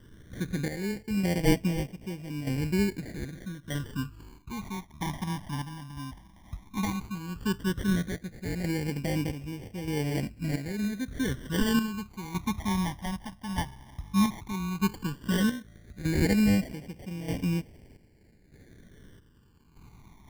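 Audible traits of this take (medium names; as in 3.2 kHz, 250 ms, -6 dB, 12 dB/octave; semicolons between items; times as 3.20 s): aliases and images of a low sample rate 1.3 kHz, jitter 0%; phasing stages 12, 0.13 Hz, lowest notch 430–1300 Hz; chopped level 0.81 Hz, depth 60%, duty 55%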